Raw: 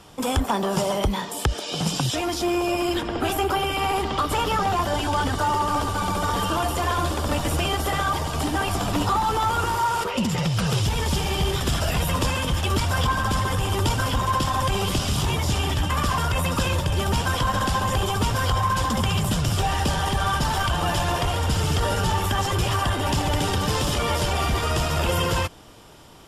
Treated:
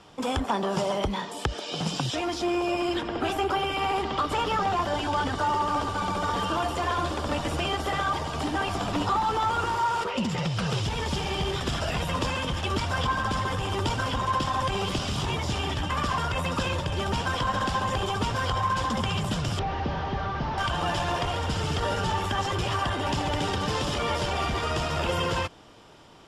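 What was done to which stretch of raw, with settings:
19.59–20.58 delta modulation 32 kbps, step -41 dBFS
whole clip: Bessel low-pass 5200 Hz, order 2; low shelf 110 Hz -7.5 dB; gain -2.5 dB

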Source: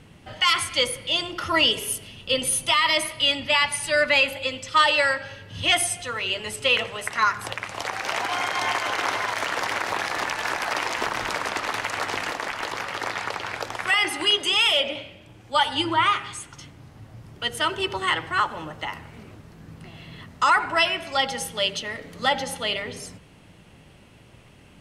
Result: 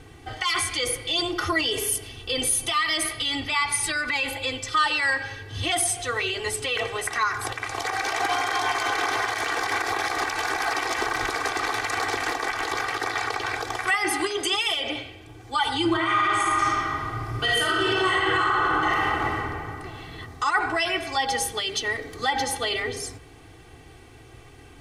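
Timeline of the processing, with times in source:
15.89–19.34 reverb throw, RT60 2.4 s, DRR -8 dB
whole clip: limiter -18.5 dBFS; bell 2800 Hz -7 dB 0.21 oct; comb 2.6 ms, depth 99%; gain +1.5 dB

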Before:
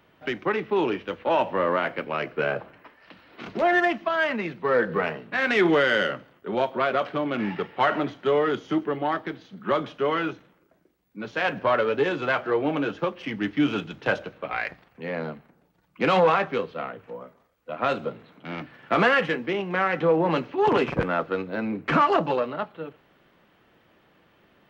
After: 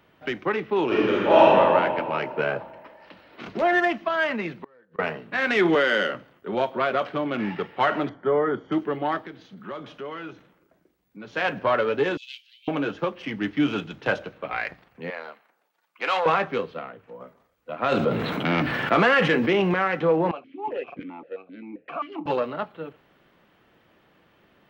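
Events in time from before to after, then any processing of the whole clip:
0.86–1.46 reverb throw, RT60 2.4 s, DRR -8.5 dB
4.54–4.99 flipped gate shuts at -22 dBFS, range -35 dB
5.75–6.15 HPF 180 Hz 24 dB/oct
8.09–8.72 polynomial smoothing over 41 samples
9.25–11.32 compressor 2:1, threshold -40 dBFS
12.17–12.68 steep high-pass 2800 Hz 48 dB/oct
15.1–16.26 HPF 780 Hz
16.79–17.2 gain -4.5 dB
17.92–19.74 fast leveller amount 70%
20.31–22.26 vowel sequencer 7.6 Hz

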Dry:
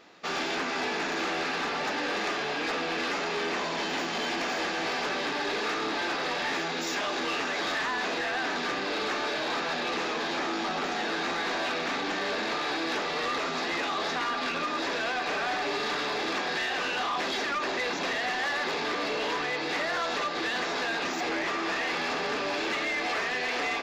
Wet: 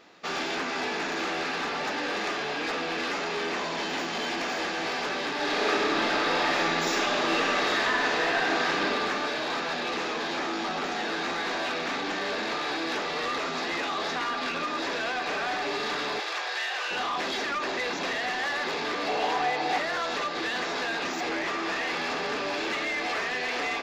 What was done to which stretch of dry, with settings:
5.34–8.82 reverb throw, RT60 2.3 s, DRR -3 dB
16.2–16.91 Bessel high-pass 670 Hz, order 8
19.07–19.78 bell 760 Hz +14.5 dB 0.29 oct

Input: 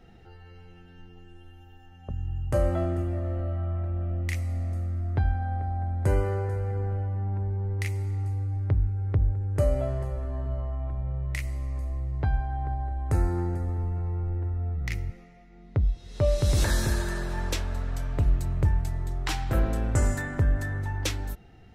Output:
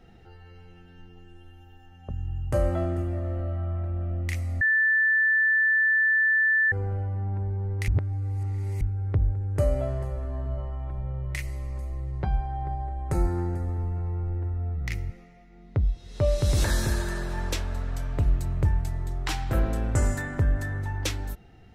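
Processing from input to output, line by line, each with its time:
4.61–6.72 bleep 1760 Hz -18.5 dBFS
7.88–8.81 reverse
10.57–13.26 comb 5.4 ms, depth 56%

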